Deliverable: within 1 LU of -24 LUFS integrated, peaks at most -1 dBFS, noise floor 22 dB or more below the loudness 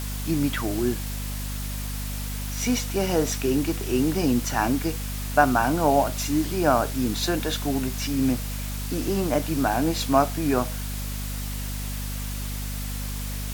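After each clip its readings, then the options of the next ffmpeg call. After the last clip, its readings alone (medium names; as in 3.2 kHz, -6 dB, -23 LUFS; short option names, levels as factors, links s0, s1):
hum 50 Hz; highest harmonic 250 Hz; hum level -29 dBFS; noise floor -31 dBFS; noise floor target -48 dBFS; loudness -25.5 LUFS; peak level -3.0 dBFS; loudness target -24.0 LUFS
-> -af "bandreject=f=50:t=h:w=6,bandreject=f=100:t=h:w=6,bandreject=f=150:t=h:w=6,bandreject=f=200:t=h:w=6,bandreject=f=250:t=h:w=6"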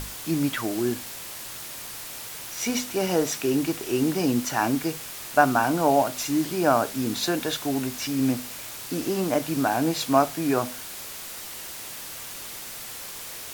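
hum not found; noise floor -38 dBFS; noise floor target -48 dBFS
-> -af "afftdn=nr=10:nf=-38"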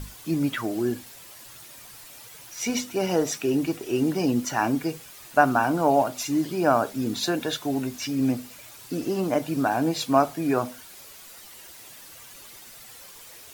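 noise floor -46 dBFS; noise floor target -48 dBFS
-> -af "afftdn=nr=6:nf=-46"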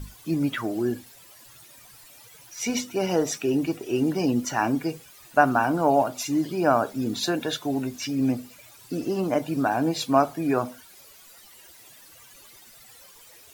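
noise floor -51 dBFS; loudness -25.5 LUFS; peak level -3.5 dBFS; loudness target -24.0 LUFS
-> -af "volume=1.19"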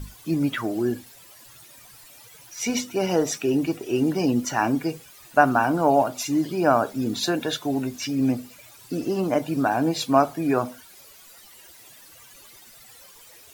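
loudness -24.0 LUFS; peak level -2.0 dBFS; noise floor -49 dBFS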